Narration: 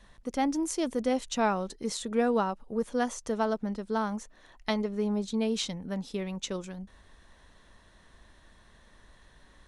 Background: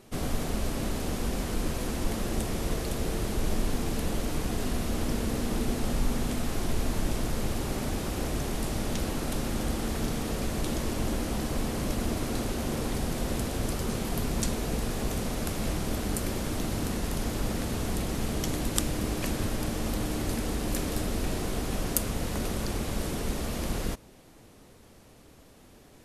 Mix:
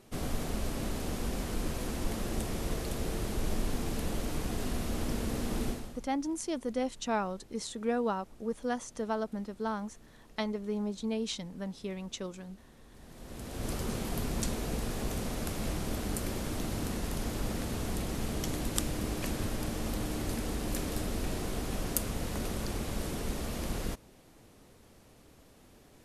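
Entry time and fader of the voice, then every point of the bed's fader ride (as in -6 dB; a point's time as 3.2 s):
5.70 s, -4.5 dB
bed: 5.68 s -4 dB
6.1 s -28 dB
12.85 s -28 dB
13.71 s -4 dB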